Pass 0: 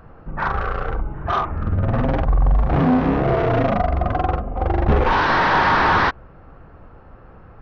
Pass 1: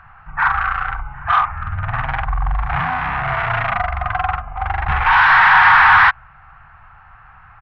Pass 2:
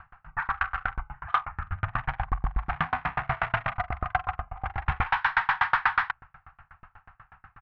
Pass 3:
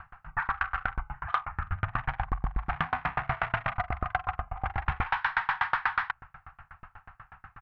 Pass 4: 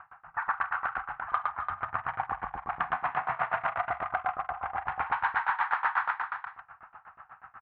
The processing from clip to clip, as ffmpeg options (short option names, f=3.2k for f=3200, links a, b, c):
-af "firequalizer=gain_entry='entry(130,0);entry(250,-20);entry(370,-21);entry(530,-18);entry(760,7);entry(1500,14);entry(2200,14);entry(4500,1);entry(9500,-6)':delay=0.05:min_phase=1,volume=-4dB"
-af "acompressor=threshold=-15dB:ratio=4,aeval=exprs='val(0)*pow(10,-35*if(lt(mod(8.2*n/s,1),2*abs(8.2)/1000),1-mod(8.2*n/s,1)/(2*abs(8.2)/1000),(mod(8.2*n/s,1)-2*abs(8.2)/1000)/(1-2*abs(8.2)/1000))/20)':c=same"
-af "acompressor=threshold=-29dB:ratio=2.5,volume=2.5dB"
-af "bandpass=f=900:t=q:w=0.89:csg=0,aecho=1:1:112|259|342|492:0.708|0.224|0.501|0.2"